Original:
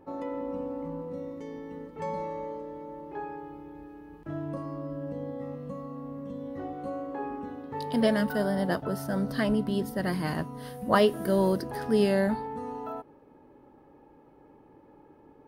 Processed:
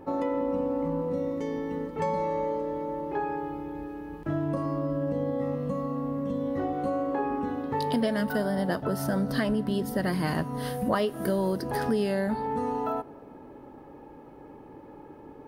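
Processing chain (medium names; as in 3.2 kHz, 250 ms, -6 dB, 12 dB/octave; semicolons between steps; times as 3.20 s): compression 5:1, threshold -33 dBFS, peak gain reduction 14.5 dB; on a send: reverberation RT60 3.1 s, pre-delay 4 ms, DRR 22.5 dB; on the sum: trim +8.5 dB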